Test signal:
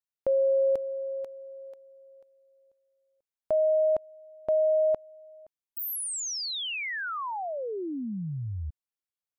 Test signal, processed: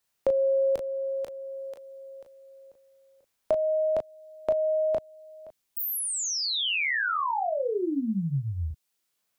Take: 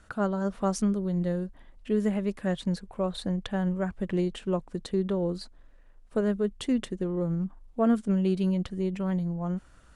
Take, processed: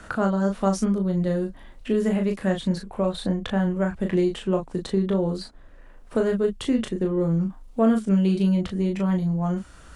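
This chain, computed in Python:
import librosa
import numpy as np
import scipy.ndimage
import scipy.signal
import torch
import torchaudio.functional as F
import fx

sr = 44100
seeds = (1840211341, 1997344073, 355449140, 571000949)

y = fx.room_early_taps(x, sr, ms=(22, 36), db=(-9.0, -5.0))
y = fx.band_squash(y, sr, depth_pct=40)
y = y * librosa.db_to_amplitude(3.5)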